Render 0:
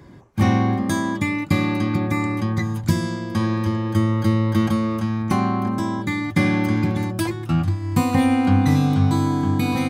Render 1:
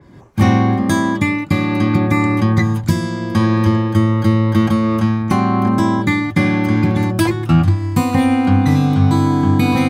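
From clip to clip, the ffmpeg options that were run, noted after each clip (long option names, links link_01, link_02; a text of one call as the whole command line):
ffmpeg -i in.wav -af "dynaudnorm=framelen=130:gausssize=3:maxgain=12dB,adynamicequalizer=threshold=0.0141:dfrequency=4200:dqfactor=0.7:tfrequency=4200:tqfactor=0.7:attack=5:release=100:ratio=0.375:range=2:mode=cutabove:tftype=highshelf,volume=-1dB" out.wav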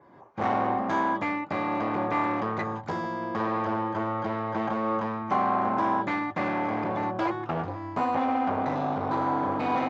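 ffmpeg -i in.wav -af "aresample=16000,volume=14.5dB,asoftclip=hard,volume=-14.5dB,aresample=44100,bandpass=frequency=850:width_type=q:width=1.5:csg=0" out.wav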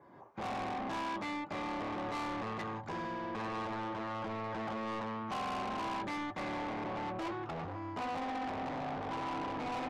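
ffmpeg -i in.wav -af "asoftclip=type=tanh:threshold=-31.5dB,volume=-3.5dB" out.wav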